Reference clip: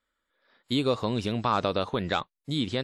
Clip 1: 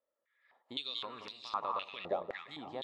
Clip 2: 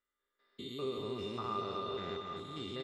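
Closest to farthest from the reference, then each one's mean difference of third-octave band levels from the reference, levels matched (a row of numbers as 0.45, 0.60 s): 2, 1; 6.5, 9.5 dB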